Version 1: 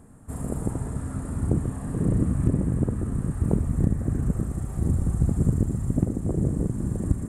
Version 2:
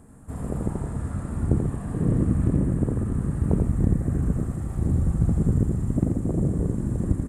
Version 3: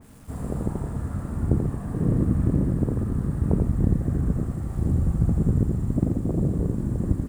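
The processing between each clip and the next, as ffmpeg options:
-filter_complex "[0:a]acrossover=split=5200[a][b];[b]acompressor=threshold=-54dB:ratio=4:attack=1:release=60[c];[a][c]amix=inputs=2:normalize=0,aecho=1:1:86:0.596"
-af "acrusher=bits=8:mix=0:aa=0.000001,adynamicequalizer=threshold=0.00355:dfrequency=2100:dqfactor=0.7:tfrequency=2100:tqfactor=0.7:attack=5:release=100:ratio=0.375:range=2.5:mode=cutabove:tftype=highshelf"

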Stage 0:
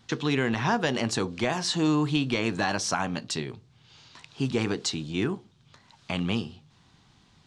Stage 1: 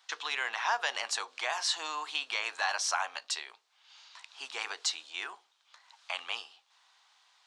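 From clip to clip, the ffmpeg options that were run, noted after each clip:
-af "highpass=f=770:w=0.5412,highpass=f=770:w=1.3066,volume=-1.5dB"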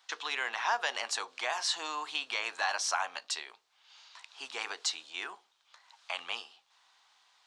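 -af "lowshelf=f=270:g=11.5,volume=-1dB"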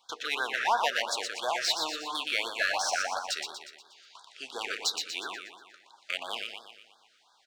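-filter_complex "[0:a]asplit=2[a][b];[b]adynamicsmooth=sensitivity=6.5:basefreq=1.9k,volume=-1dB[c];[a][c]amix=inputs=2:normalize=0,aecho=1:1:120|240|360|480|600|720|840:0.531|0.276|0.144|0.0746|0.0388|0.0202|0.0105,afftfilt=real='re*(1-between(b*sr/1024,840*pow(2400/840,0.5+0.5*sin(2*PI*2.9*pts/sr))/1.41,840*pow(2400/840,0.5+0.5*sin(2*PI*2.9*pts/sr))*1.41))':imag='im*(1-between(b*sr/1024,840*pow(2400/840,0.5+0.5*sin(2*PI*2.9*pts/sr))/1.41,840*pow(2400/840,0.5+0.5*sin(2*PI*2.9*pts/sr))*1.41))':win_size=1024:overlap=0.75"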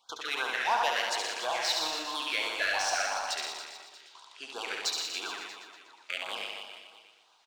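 -af "aecho=1:1:70|161|279.3|433.1|633:0.631|0.398|0.251|0.158|0.1,volume=-2.5dB"

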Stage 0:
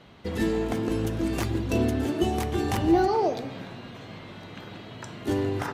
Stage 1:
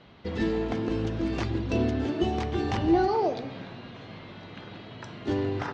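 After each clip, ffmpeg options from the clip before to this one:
-af "lowpass=f=5.4k:w=0.5412,lowpass=f=5.4k:w=1.3066,volume=-1.5dB"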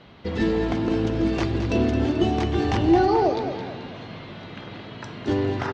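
-af "aecho=1:1:218|436|654|872|1090:0.355|0.153|0.0656|0.0282|0.0121,volume=4.5dB"

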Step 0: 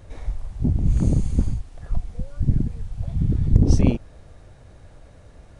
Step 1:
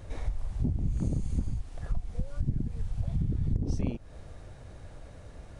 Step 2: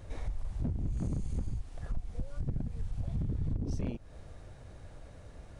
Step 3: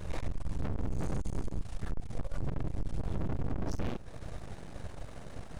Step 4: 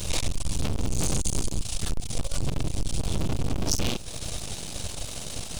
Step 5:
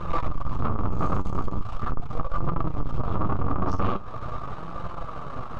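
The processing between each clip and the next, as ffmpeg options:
-af "acompressor=threshold=-25dB:ratio=8"
-af "volume=24.5dB,asoftclip=hard,volume=-24.5dB,volume=-3dB"
-af "aeval=exprs='(tanh(100*val(0)+0.7)-tanh(0.7))/100':c=same,aeval=exprs='abs(val(0))':c=same,volume=11dB"
-af "aexciter=amount=5.9:drive=6.1:freq=2.6k,volume=6.5dB"
-af "flanger=delay=5.8:depth=5.2:regen=54:speed=0.41:shape=sinusoidal,lowpass=f=1.2k:t=q:w=9.4,volume=5dB"

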